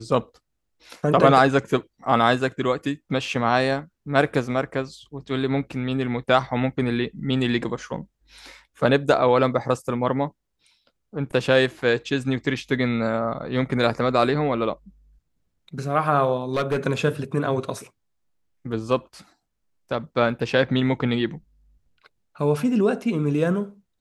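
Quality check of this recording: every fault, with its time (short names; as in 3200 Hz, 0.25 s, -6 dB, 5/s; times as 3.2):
16.37–16.79 clipped -18 dBFS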